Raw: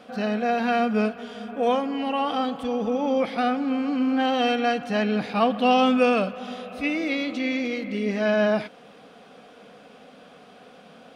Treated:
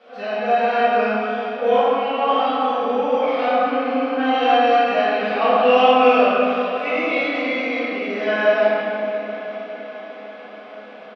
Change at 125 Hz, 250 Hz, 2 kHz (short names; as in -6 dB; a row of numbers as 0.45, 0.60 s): n/a, -1.5 dB, +7.0 dB